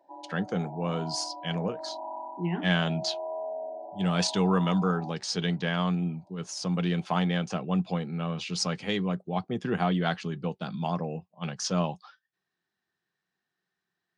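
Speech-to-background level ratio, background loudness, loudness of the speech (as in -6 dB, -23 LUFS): 10.0 dB, -39.5 LUFS, -29.5 LUFS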